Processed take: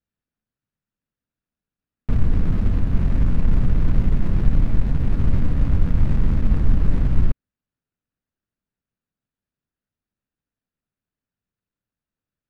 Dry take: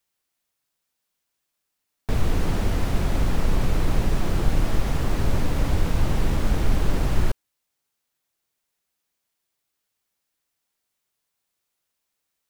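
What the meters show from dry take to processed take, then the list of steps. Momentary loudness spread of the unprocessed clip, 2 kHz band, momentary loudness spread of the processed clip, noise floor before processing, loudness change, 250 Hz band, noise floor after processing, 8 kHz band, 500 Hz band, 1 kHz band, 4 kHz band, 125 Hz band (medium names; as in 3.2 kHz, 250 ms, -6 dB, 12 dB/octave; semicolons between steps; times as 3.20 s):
2 LU, -7.0 dB, 2 LU, -80 dBFS, +3.5 dB, +3.0 dB, under -85 dBFS, under -15 dB, -5.5 dB, -7.5 dB, under -10 dB, +4.5 dB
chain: median filter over 41 samples; low-pass 2.6 kHz 6 dB/octave; high-order bell 520 Hz -8 dB; trim +4.5 dB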